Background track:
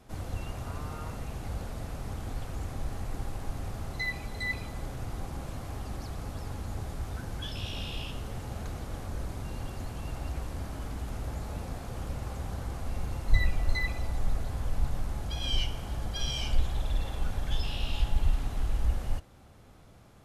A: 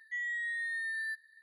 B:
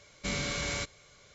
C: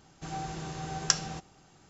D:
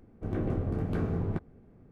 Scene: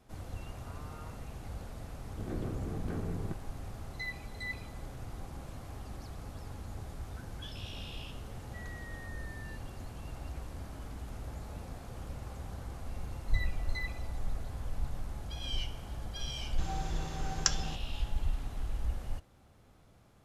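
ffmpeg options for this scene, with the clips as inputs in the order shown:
-filter_complex "[0:a]volume=-6.5dB[a];[4:a]atrim=end=1.91,asetpts=PTS-STARTPTS,volume=-7dB,afade=t=in:d=0.004:c=hsin,afade=t=out:st=1.906:d=0.004:c=hsin,adelay=1950[b];[1:a]atrim=end=1.42,asetpts=PTS-STARTPTS,volume=-15dB,afade=t=in:d=0.004:c=hsin,afade=t=out:st=1.416:d=0.004:c=hsin,adelay=371322S[c];[3:a]atrim=end=1.89,asetpts=PTS-STARTPTS,volume=-3.5dB,afade=t=in:d=0.004:c=hsin,afade=t=out:st=1.886:d=0.004:c=hsin,adelay=721476S[d];[a][b][c][d]amix=inputs=4:normalize=0"

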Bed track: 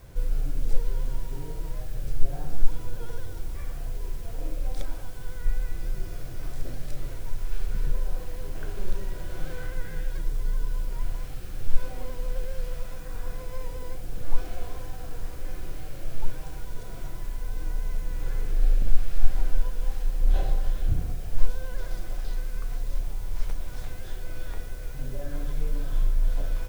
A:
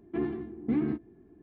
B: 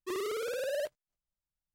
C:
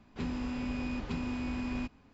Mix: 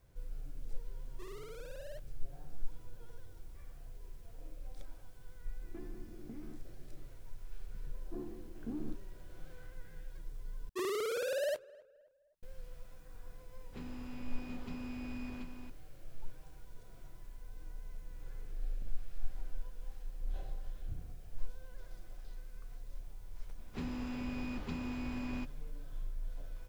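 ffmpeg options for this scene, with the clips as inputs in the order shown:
-filter_complex "[2:a]asplit=2[a][b];[1:a]asplit=2[c][d];[3:a]asplit=2[e][f];[0:a]volume=-17.5dB[g];[c]acompressor=threshold=-43dB:ratio=4:attack=18:release=336:knee=1:detection=peak[h];[d]lowpass=f=1.2k:w=0.5412,lowpass=f=1.2k:w=1.3066[i];[b]asplit=2[j][k];[k]adelay=261,lowpass=f=1.8k:p=1,volume=-22dB,asplit=2[l][m];[m]adelay=261,lowpass=f=1.8k:p=1,volume=0.43,asplit=2[n][o];[o]adelay=261,lowpass=f=1.8k:p=1,volume=0.43[p];[j][l][n][p]amix=inputs=4:normalize=0[q];[e]aecho=1:1:730:0.562[r];[g]asplit=2[s][t];[s]atrim=end=10.694[u];[q]atrim=end=1.74,asetpts=PTS-STARTPTS,volume=-0.5dB[v];[t]atrim=start=12.426[w];[a]atrim=end=1.74,asetpts=PTS-STARTPTS,volume=-15dB,afade=t=in:d=0.004:c=hsin,afade=t=out:st=1.736:d=0.004:c=hsin,adelay=1120[x];[h]atrim=end=1.42,asetpts=PTS-STARTPTS,volume=-7dB,afade=t=in:d=0.004:c=hsin,afade=t=out:st=1.416:d=0.004:c=hsin,adelay=247401S[y];[i]atrim=end=1.42,asetpts=PTS-STARTPTS,volume=-13.5dB,afade=t=in:d=0.004:c=hsin,afade=t=out:st=1.416:d=0.004:c=hsin,adelay=7980[z];[r]atrim=end=2.13,asetpts=PTS-STARTPTS,volume=-11dB,afade=t=in:d=0.004:c=hsin,afade=t=out:st=2.126:d=0.004:c=hsin,adelay=13570[aa];[f]atrim=end=2.13,asetpts=PTS-STARTPTS,volume=-4.5dB,afade=t=in:d=0.004:c=hsin,afade=t=out:st=2.126:d=0.004:c=hsin,adelay=23580[ab];[u][v]acrossfade=d=0.004:c1=hsin:c2=hsin[ac];[ac][w]acrossfade=d=0.004:c1=hsin:c2=hsin[ad];[ad][x][y][z][aa][ab]amix=inputs=6:normalize=0"

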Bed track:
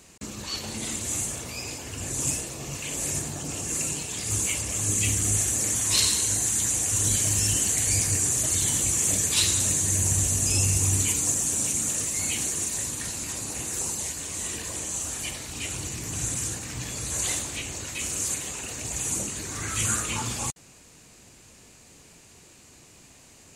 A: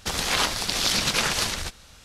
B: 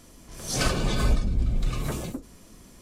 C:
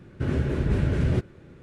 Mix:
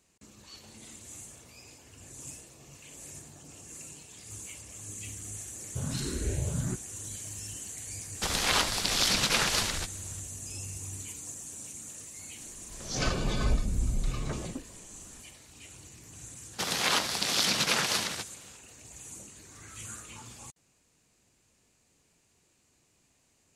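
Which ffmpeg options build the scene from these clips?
-filter_complex "[1:a]asplit=2[a][b];[0:a]volume=-17dB[c];[3:a]asplit=2[d][e];[e]afreqshift=1.4[f];[d][f]amix=inputs=2:normalize=1[g];[2:a]aresample=16000,aresample=44100[h];[b]highpass=f=120:w=0.5412,highpass=f=120:w=1.3066[i];[g]atrim=end=1.62,asetpts=PTS-STARTPTS,volume=-6dB,afade=t=in:d=0.004:c=hsin,afade=t=out:st=1.616:d=0.004:c=hsin,adelay=5550[j];[a]atrim=end=2.04,asetpts=PTS-STARTPTS,volume=-3dB,afade=t=in:d=0.004:c=hsin,afade=t=out:st=2.036:d=0.004:c=hsin,adelay=8160[k];[h]atrim=end=2.81,asetpts=PTS-STARTPTS,volume=-4.5dB,afade=t=in:d=0.004:c=hsin,afade=t=out:st=2.806:d=0.004:c=hsin,adelay=12410[l];[i]atrim=end=2.04,asetpts=PTS-STARTPTS,volume=-3.5dB,afade=t=in:d=0.004:c=hsin,afade=t=out:st=2.036:d=0.004:c=hsin,adelay=16530[m];[c][j][k][l][m]amix=inputs=5:normalize=0"

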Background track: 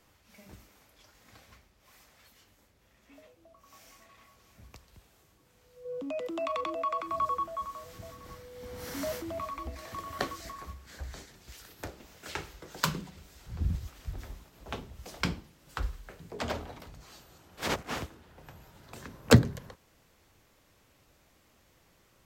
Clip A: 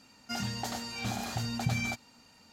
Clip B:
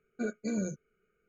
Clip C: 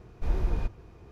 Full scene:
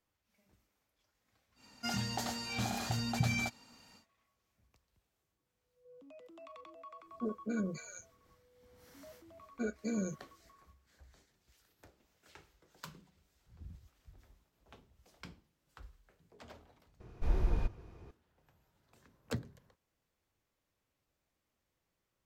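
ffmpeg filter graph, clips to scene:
-filter_complex "[2:a]asplit=2[a][b];[0:a]volume=-20dB[c];[a]acrossover=split=830[d][e];[e]adelay=280[f];[d][f]amix=inputs=2:normalize=0[g];[c]asplit=2[h][i];[h]atrim=end=17.004[j];[3:a]atrim=end=1.11,asetpts=PTS-STARTPTS,volume=-3.5dB[k];[i]atrim=start=18.106[l];[1:a]atrim=end=2.52,asetpts=PTS-STARTPTS,volume=-1.5dB,afade=t=in:d=0.1,afade=t=out:st=2.42:d=0.1,adelay=1540[m];[g]atrim=end=1.28,asetpts=PTS-STARTPTS,volume=-3dB,afade=t=in:d=0.004:c=hsin,afade=t=out:st=1.276:d=0.004:c=hsin,adelay=7020[n];[b]atrim=end=1.28,asetpts=PTS-STARTPTS,volume=-3dB,afade=t=in:d=0.004:c=hsin,afade=t=out:st=1.276:d=0.004:c=hsin,adelay=9400[o];[j][k]acrossfade=d=0.004:c1=hsin:c2=hsin[p];[p][l]acrossfade=d=0.004:c1=hsin:c2=hsin[q];[q][m][n][o]amix=inputs=4:normalize=0"

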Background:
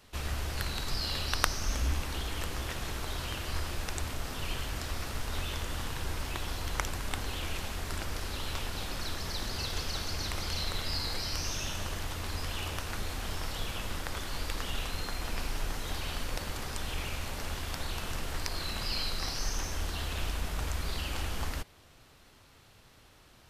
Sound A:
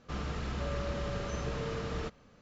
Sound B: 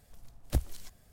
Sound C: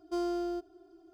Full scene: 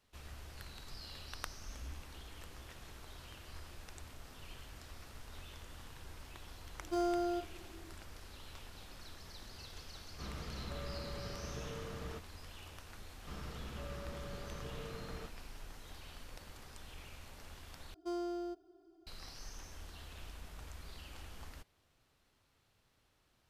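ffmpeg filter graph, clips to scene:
-filter_complex "[3:a]asplit=2[a][b];[1:a]asplit=2[c][d];[0:a]volume=-16dB[e];[a]aecho=1:1:30|40:0.473|0.447[f];[e]asplit=2[g][h];[g]atrim=end=17.944[i];[b]atrim=end=1.13,asetpts=PTS-STARTPTS,volume=-6.5dB[j];[h]atrim=start=19.066[k];[f]atrim=end=1.13,asetpts=PTS-STARTPTS,volume=-2dB,afade=t=in:d=0.004:c=hsin,afade=t=out:st=1.126:d=0.004:c=hsin,adelay=6800[l];[c]atrim=end=2.41,asetpts=PTS-STARTPTS,volume=-9dB,afade=t=in:d=0.004:c=hsin,afade=t=out:st=2.406:d=0.004:c=hsin,adelay=445410S[m];[d]atrim=end=2.41,asetpts=PTS-STARTPTS,volume=-10.5dB,afade=t=in:d=0.004:c=hsin,afade=t=out:st=2.406:d=0.004:c=hsin,adelay=13180[n];[i][j]acrossfade=d=0.004:c1=hsin:c2=hsin[o];[o][k]acrossfade=d=0.004:c1=hsin:c2=hsin[p];[p][l][m][n]amix=inputs=4:normalize=0"

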